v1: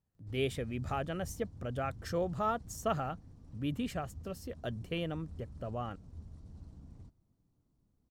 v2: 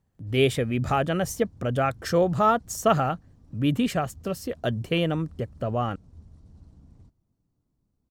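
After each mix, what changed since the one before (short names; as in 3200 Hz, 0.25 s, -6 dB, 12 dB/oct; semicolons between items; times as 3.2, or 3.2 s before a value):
speech +12.0 dB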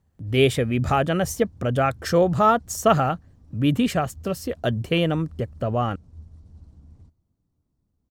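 speech +3.0 dB; master: add bell 77 Hz +8 dB 0.3 oct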